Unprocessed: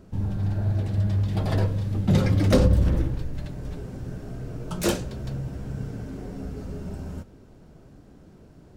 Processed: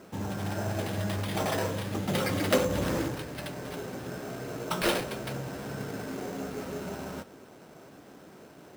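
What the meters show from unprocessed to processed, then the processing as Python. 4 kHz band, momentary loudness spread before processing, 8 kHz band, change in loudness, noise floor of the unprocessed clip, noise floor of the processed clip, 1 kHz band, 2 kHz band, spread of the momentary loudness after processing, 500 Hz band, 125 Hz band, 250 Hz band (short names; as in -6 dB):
+2.5 dB, 16 LU, +1.0 dB, -6.0 dB, -51 dBFS, -52 dBFS, +3.5 dB, +4.5 dB, 23 LU, -0.5 dB, -11.5 dB, -5.0 dB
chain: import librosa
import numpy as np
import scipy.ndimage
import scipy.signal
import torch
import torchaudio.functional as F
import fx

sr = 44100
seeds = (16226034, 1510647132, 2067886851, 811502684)

p1 = fx.weighting(x, sr, curve='A')
p2 = fx.over_compress(p1, sr, threshold_db=-36.0, ratio=-0.5)
p3 = p1 + (p2 * 10.0 ** (0.5 / 20.0))
y = fx.sample_hold(p3, sr, seeds[0], rate_hz=6800.0, jitter_pct=0)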